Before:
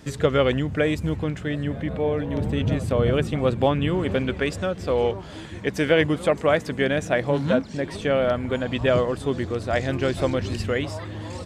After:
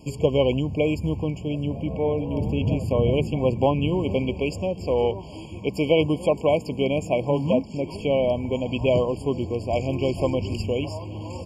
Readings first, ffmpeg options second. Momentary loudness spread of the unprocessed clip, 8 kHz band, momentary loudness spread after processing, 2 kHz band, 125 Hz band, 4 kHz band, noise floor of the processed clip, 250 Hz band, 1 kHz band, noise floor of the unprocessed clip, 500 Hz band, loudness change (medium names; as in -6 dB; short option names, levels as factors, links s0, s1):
7 LU, no reading, 7 LU, -8.0 dB, 0.0 dB, -2.0 dB, -38 dBFS, 0.0 dB, -1.5 dB, -37 dBFS, 0.0 dB, -0.5 dB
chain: -af "afftfilt=real='re*eq(mod(floor(b*sr/1024/1100),2),0)':imag='im*eq(mod(floor(b*sr/1024/1100),2),0)':win_size=1024:overlap=0.75"